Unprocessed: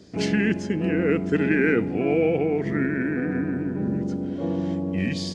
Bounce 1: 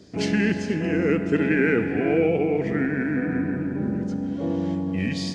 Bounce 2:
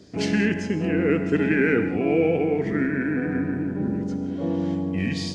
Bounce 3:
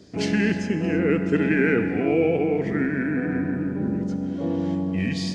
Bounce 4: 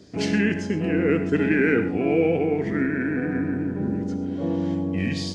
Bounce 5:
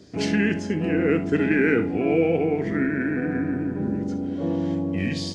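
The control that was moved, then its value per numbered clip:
reverb whose tail is shaped and stops, gate: 520, 220, 350, 150, 90 milliseconds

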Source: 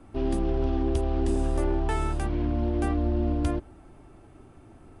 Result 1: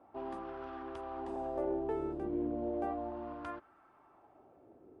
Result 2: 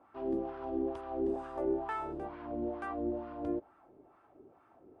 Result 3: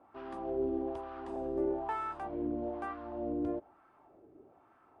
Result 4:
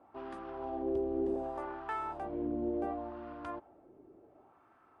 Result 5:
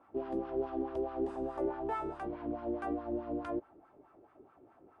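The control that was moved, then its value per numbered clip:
LFO wah, speed: 0.34, 2.2, 1.1, 0.68, 4.7 Hertz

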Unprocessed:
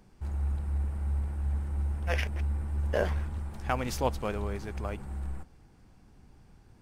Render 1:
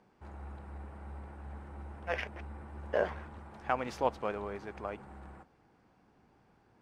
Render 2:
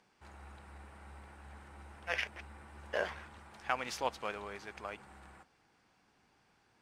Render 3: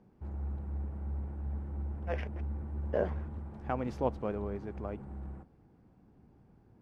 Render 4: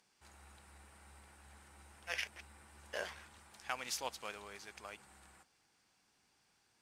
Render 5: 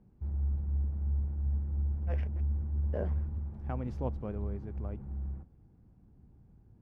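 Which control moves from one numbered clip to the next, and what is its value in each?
resonant band-pass, frequency: 870, 2,300, 290, 5,800, 110 Hertz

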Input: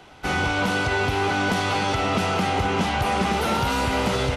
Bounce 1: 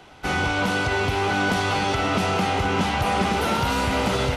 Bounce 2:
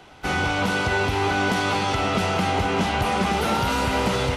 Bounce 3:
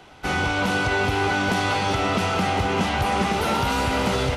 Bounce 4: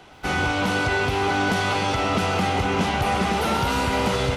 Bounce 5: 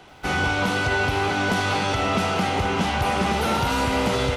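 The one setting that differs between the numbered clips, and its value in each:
feedback echo at a low word length, delay time: 682, 215, 389, 129, 80 milliseconds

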